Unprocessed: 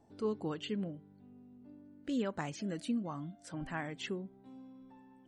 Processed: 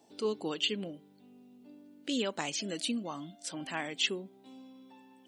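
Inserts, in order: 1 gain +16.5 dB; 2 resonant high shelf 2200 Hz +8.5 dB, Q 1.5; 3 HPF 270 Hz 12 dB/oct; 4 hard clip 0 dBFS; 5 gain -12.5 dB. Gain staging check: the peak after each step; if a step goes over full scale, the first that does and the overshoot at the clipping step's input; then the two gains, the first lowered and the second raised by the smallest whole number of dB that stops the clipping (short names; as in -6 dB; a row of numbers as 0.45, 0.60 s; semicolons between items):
-7.0, -4.0, -4.0, -4.0, -16.5 dBFS; no overload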